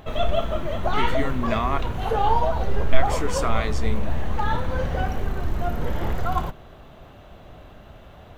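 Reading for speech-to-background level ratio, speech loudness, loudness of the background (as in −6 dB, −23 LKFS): −3.0 dB, −29.5 LKFS, −26.5 LKFS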